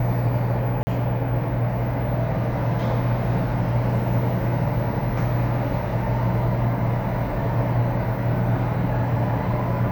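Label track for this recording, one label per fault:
0.830000	0.870000	gap 40 ms

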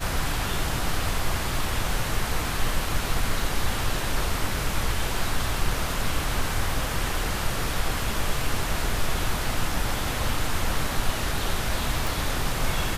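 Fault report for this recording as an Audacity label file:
12.070000	12.070000	pop

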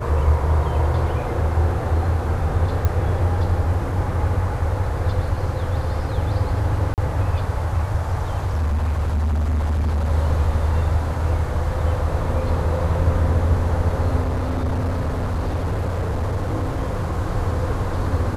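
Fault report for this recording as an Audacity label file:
2.850000	2.850000	pop -9 dBFS
6.940000	6.980000	gap 38 ms
8.450000	10.120000	clipped -17.5 dBFS
14.210000	17.180000	clipped -18.5 dBFS

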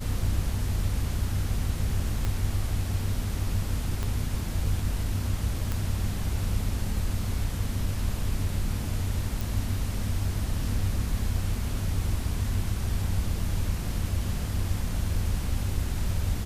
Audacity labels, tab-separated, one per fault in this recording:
2.250000	2.250000	pop -16 dBFS
4.030000	4.030000	pop -17 dBFS
5.720000	5.720000	pop
9.410000	9.410000	pop

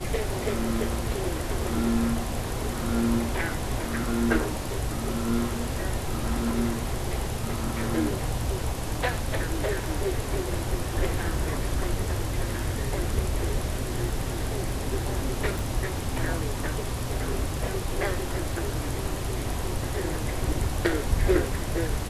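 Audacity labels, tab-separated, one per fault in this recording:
15.590000	15.590000	pop

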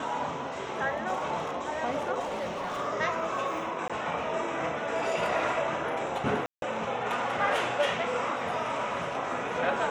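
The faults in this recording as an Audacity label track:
2.190000	2.790000	clipped -29.5 dBFS
3.880000	3.900000	gap 16 ms
6.460000	6.620000	gap 0.162 s

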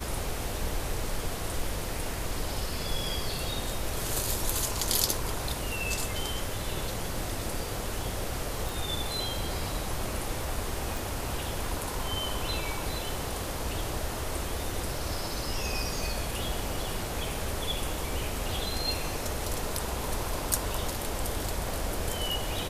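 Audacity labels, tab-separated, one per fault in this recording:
8.690000	8.690000	pop
10.970000	10.970000	pop

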